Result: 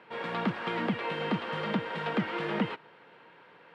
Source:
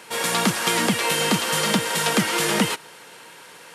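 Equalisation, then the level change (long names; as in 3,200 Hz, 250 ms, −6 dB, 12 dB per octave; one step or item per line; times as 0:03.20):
high-pass filter 85 Hz
low-pass filter 6,300 Hz 12 dB per octave
high-frequency loss of the air 470 metres
−7.0 dB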